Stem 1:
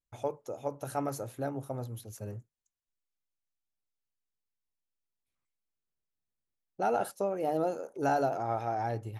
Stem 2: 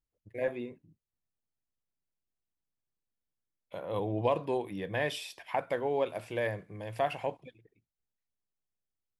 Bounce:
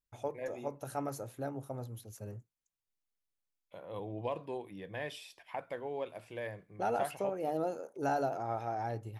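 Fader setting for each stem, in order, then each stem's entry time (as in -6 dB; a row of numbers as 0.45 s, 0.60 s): -4.0 dB, -8.5 dB; 0.00 s, 0.00 s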